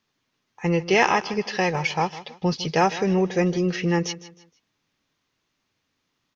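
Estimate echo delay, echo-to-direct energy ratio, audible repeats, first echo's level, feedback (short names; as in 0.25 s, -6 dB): 0.156 s, -15.5 dB, 2, -16.0 dB, 33%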